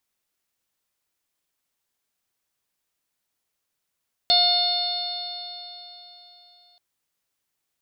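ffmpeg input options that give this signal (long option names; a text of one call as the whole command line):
ffmpeg -f lavfi -i "aevalsrc='0.0794*pow(10,-3*t/3.58)*sin(2*PI*707.49*t)+0.0112*pow(10,-3*t/3.58)*sin(2*PI*1417.95*t)+0.0133*pow(10,-3*t/3.58)*sin(2*PI*2134.32*t)+0.0168*pow(10,-3*t/3.58)*sin(2*PI*2859.5*t)+0.112*pow(10,-3*t/3.58)*sin(2*PI*3596.33*t)+0.15*pow(10,-3*t/3.58)*sin(2*PI*4347.58*t)+0.0251*pow(10,-3*t/3.58)*sin(2*PI*5115.94*t)':duration=2.48:sample_rate=44100" out.wav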